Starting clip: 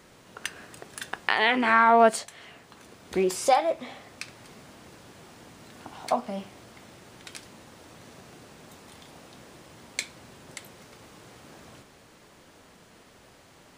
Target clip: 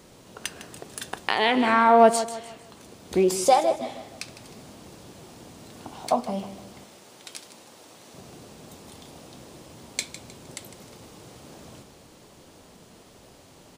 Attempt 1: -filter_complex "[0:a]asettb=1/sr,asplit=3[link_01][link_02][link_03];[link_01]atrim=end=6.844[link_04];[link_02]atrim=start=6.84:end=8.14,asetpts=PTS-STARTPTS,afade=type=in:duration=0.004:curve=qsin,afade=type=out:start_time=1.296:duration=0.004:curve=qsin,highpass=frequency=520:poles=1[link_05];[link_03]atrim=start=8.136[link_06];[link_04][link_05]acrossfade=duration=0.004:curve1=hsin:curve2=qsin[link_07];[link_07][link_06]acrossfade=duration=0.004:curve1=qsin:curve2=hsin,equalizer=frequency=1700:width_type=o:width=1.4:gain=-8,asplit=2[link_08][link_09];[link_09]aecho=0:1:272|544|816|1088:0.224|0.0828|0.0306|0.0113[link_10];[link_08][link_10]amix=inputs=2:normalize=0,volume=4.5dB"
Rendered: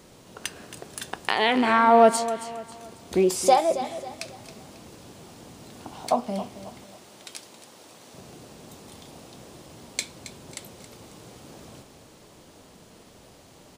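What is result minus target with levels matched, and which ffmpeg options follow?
echo 117 ms late
-filter_complex "[0:a]asettb=1/sr,asplit=3[link_01][link_02][link_03];[link_01]atrim=end=6.844[link_04];[link_02]atrim=start=6.84:end=8.14,asetpts=PTS-STARTPTS,afade=type=in:duration=0.004:curve=qsin,afade=type=out:start_time=1.296:duration=0.004:curve=qsin,highpass=frequency=520:poles=1[link_05];[link_03]atrim=start=8.136[link_06];[link_04][link_05]acrossfade=duration=0.004:curve1=hsin:curve2=qsin[link_07];[link_07][link_06]acrossfade=duration=0.004:curve1=qsin:curve2=hsin,equalizer=frequency=1700:width_type=o:width=1.4:gain=-8,asplit=2[link_08][link_09];[link_09]aecho=0:1:155|310|465|620:0.224|0.0828|0.0306|0.0113[link_10];[link_08][link_10]amix=inputs=2:normalize=0,volume=4.5dB"

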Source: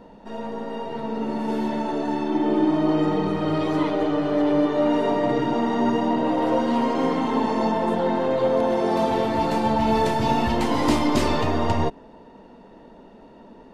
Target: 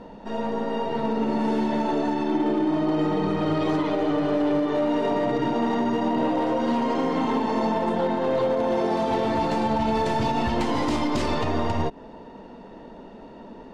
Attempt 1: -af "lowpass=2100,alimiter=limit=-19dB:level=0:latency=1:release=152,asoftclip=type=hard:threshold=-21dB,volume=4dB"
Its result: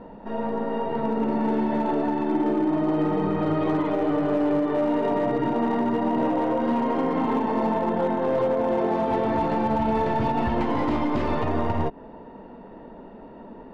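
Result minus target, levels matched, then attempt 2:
8,000 Hz band −13.0 dB
-af "lowpass=8100,alimiter=limit=-19dB:level=0:latency=1:release=152,asoftclip=type=hard:threshold=-21dB,volume=4dB"

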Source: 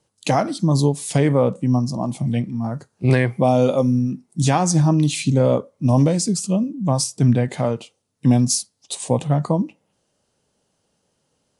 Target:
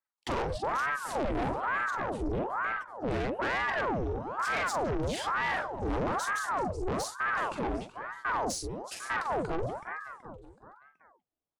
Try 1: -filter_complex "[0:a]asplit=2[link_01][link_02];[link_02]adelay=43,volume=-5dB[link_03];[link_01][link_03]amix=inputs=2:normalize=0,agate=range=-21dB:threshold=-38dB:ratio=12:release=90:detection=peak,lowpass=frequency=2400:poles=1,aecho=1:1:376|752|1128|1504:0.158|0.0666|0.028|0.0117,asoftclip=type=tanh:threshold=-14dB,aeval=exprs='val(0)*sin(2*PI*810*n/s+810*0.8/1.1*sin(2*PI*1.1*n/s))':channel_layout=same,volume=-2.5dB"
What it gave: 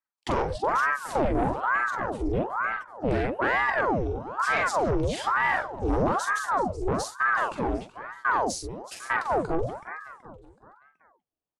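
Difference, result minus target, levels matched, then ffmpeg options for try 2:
soft clipping: distortion −7 dB
-filter_complex "[0:a]asplit=2[link_01][link_02];[link_02]adelay=43,volume=-5dB[link_03];[link_01][link_03]amix=inputs=2:normalize=0,agate=range=-21dB:threshold=-38dB:ratio=12:release=90:detection=peak,lowpass=frequency=2400:poles=1,aecho=1:1:376|752|1128|1504:0.158|0.0666|0.028|0.0117,asoftclip=type=tanh:threshold=-23dB,aeval=exprs='val(0)*sin(2*PI*810*n/s+810*0.8/1.1*sin(2*PI*1.1*n/s))':channel_layout=same,volume=-2.5dB"

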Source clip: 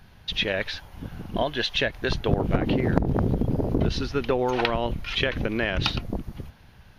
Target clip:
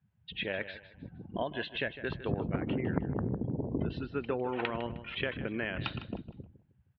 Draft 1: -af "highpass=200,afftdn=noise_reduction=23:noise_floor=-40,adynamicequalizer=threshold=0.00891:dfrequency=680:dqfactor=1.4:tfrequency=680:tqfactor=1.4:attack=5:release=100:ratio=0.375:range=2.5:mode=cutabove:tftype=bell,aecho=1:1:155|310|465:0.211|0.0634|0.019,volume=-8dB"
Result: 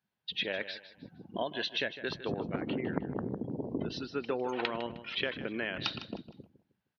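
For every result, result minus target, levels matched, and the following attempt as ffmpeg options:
125 Hz band −6.5 dB; 4,000 Hz band +6.0 dB
-af "highpass=95,afftdn=noise_reduction=23:noise_floor=-40,adynamicequalizer=threshold=0.00891:dfrequency=680:dqfactor=1.4:tfrequency=680:tqfactor=1.4:attack=5:release=100:ratio=0.375:range=2.5:mode=cutabove:tftype=bell,aecho=1:1:155|310|465:0.211|0.0634|0.019,volume=-8dB"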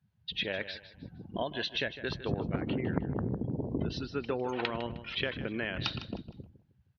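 4,000 Hz band +5.0 dB
-af "highpass=95,afftdn=noise_reduction=23:noise_floor=-40,adynamicequalizer=threshold=0.00891:dfrequency=680:dqfactor=1.4:tfrequency=680:tqfactor=1.4:attack=5:release=100:ratio=0.375:range=2.5:mode=cutabove:tftype=bell,lowpass=frequency=3000:width=0.5412,lowpass=frequency=3000:width=1.3066,aecho=1:1:155|310|465:0.211|0.0634|0.019,volume=-8dB"

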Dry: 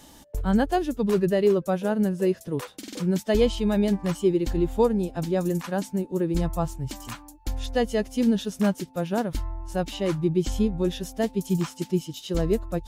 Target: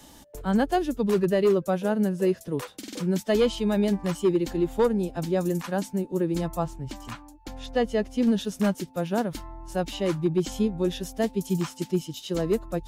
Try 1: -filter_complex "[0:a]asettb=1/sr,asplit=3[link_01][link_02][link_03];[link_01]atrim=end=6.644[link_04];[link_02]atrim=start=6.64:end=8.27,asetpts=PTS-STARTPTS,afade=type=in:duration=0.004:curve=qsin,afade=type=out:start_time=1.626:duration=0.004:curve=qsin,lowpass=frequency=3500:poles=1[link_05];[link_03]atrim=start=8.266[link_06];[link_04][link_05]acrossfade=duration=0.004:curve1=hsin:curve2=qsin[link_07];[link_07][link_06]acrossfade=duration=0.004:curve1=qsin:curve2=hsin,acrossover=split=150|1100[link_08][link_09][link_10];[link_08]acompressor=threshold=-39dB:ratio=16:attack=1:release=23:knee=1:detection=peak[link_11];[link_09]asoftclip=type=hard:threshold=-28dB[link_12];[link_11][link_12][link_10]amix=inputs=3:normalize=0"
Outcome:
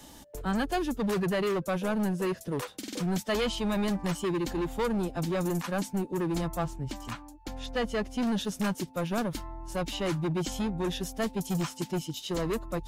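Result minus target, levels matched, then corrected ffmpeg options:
hard clipping: distortion +16 dB
-filter_complex "[0:a]asettb=1/sr,asplit=3[link_01][link_02][link_03];[link_01]atrim=end=6.644[link_04];[link_02]atrim=start=6.64:end=8.27,asetpts=PTS-STARTPTS,afade=type=in:duration=0.004:curve=qsin,afade=type=out:start_time=1.626:duration=0.004:curve=qsin,lowpass=frequency=3500:poles=1[link_05];[link_03]atrim=start=8.266[link_06];[link_04][link_05]acrossfade=duration=0.004:curve1=hsin:curve2=qsin[link_07];[link_07][link_06]acrossfade=duration=0.004:curve1=qsin:curve2=hsin,acrossover=split=150|1100[link_08][link_09][link_10];[link_08]acompressor=threshold=-39dB:ratio=16:attack=1:release=23:knee=1:detection=peak[link_11];[link_09]asoftclip=type=hard:threshold=-16dB[link_12];[link_11][link_12][link_10]amix=inputs=3:normalize=0"

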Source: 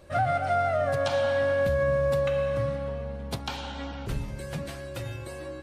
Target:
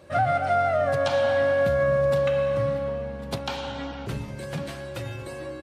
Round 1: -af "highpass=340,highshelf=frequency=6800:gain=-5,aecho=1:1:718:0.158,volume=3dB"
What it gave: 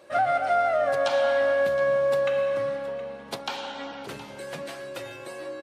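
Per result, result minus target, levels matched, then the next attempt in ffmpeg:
125 Hz band −16.0 dB; echo 382 ms early
-af "highpass=97,highshelf=frequency=6800:gain=-5,aecho=1:1:718:0.158,volume=3dB"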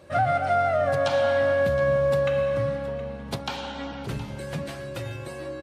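echo 382 ms early
-af "highpass=97,highshelf=frequency=6800:gain=-5,aecho=1:1:1100:0.158,volume=3dB"

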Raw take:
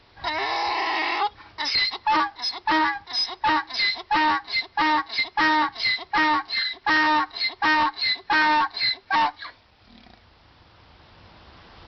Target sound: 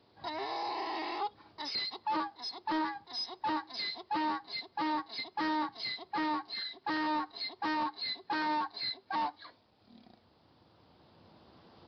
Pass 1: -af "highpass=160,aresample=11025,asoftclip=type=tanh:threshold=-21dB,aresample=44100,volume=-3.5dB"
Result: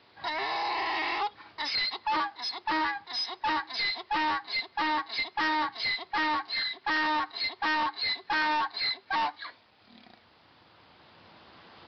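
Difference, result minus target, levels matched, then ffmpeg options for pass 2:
2,000 Hz band +4.5 dB
-af "highpass=160,equalizer=frequency=2100:width=0.54:gain=-14.5,aresample=11025,asoftclip=type=tanh:threshold=-21dB,aresample=44100,volume=-3.5dB"

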